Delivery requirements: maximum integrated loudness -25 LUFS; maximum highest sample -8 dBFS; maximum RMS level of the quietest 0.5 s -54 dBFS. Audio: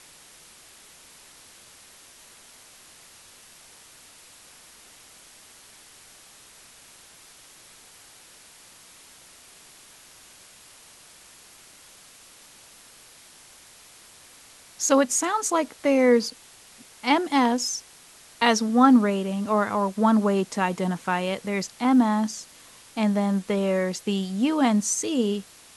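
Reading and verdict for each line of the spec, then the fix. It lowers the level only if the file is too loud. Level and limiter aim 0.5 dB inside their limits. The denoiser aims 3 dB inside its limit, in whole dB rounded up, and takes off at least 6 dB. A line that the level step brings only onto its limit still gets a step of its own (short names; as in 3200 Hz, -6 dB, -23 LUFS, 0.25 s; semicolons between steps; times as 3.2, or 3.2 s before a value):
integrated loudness -23.0 LUFS: fail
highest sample -4.5 dBFS: fail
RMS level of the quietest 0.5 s -51 dBFS: fail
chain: denoiser 6 dB, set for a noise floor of -51 dBFS; gain -2.5 dB; limiter -8.5 dBFS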